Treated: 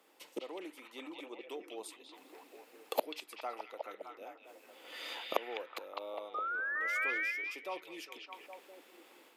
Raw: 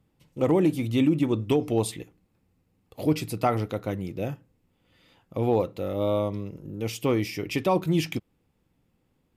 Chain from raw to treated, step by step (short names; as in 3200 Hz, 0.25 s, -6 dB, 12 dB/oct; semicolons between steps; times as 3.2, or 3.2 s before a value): painted sound rise, 6.34–7.11, 1200–2500 Hz -21 dBFS; flipped gate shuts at -30 dBFS, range -33 dB; Bessel high-pass 550 Hz, order 6; on a send: delay with a stepping band-pass 0.204 s, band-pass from 3000 Hz, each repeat -0.7 oct, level 0 dB; on the sum: AGC gain up to 6.5 dB; gain +11.5 dB